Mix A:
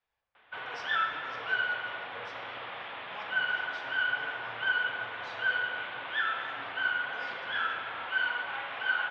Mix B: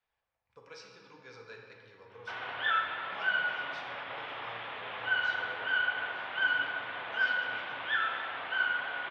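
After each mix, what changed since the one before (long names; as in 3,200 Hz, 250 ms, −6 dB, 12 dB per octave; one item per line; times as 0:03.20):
background: entry +1.75 s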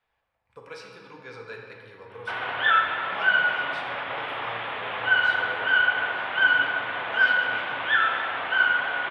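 master: remove transistor ladder low-pass 6,900 Hz, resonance 50%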